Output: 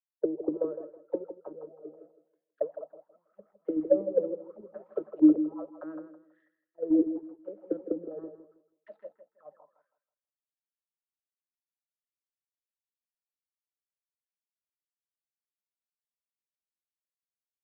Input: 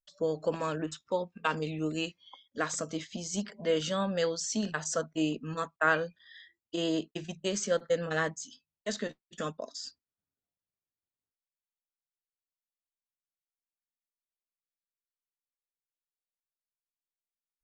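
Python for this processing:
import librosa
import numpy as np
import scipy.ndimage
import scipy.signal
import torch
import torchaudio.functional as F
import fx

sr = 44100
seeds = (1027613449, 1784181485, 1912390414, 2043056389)

p1 = scipy.signal.medfilt(x, 15)
p2 = fx.auto_wah(p1, sr, base_hz=310.0, top_hz=2000.0, q=13.0, full_db=-26.0, direction='down')
p3 = fx.small_body(p2, sr, hz=(570.0, 1300.0), ring_ms=45, db=10)
p4 = fx.level_steps(p3, sr, step_db=12)
p5 = p3 + (p4 * librosa.db_to_amplitude(-1.0))
p6 = fx.low_shelf(p5, sr, hz=170.0, db=9.0)
p7 = fx.filter_lfo_lowpass(p6, sr, shape='saw_up', hz=0.77, low_hz=590.0, high_hz=3400.0, q=1.3)
p8 = fx.high_shelf(p7, sr, hz=3200.0, db=-9.5)
p9 = p8 + fx.echo_filtered(p8, sr, ms=162, feedback_pct=49, hz=3800.0, wet_db=-7.0, dry=0)
y = fx.band_widen(p9, sr, depth_pct=100)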